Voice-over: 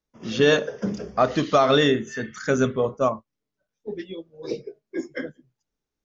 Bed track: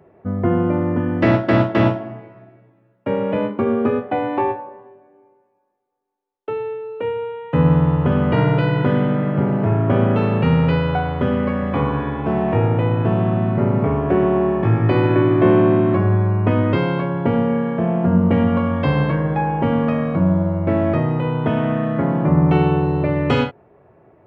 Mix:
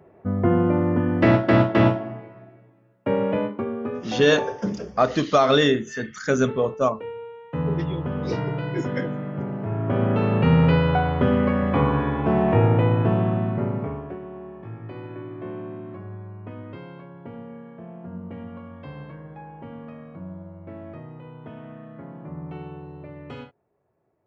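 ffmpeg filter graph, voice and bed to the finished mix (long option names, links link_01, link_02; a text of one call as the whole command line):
ffmpeg -i stem1.wav -i stem2.wav -filter_complex "[0:a]adelay=3800,volume=0.5dB[link_01];[1:a]volume=9dB,afade=type=out:start_time=3.24:duration=0.47:silence=0.334965,afade=type=in:start_time=9.65:duration=0.99:silence=0.298538,afade=type=out:start_time=12.78:duration=1.41:silence=0.0944061[link_02];[link_01][link_02]amix=inputs=2:normalize=0" out.wav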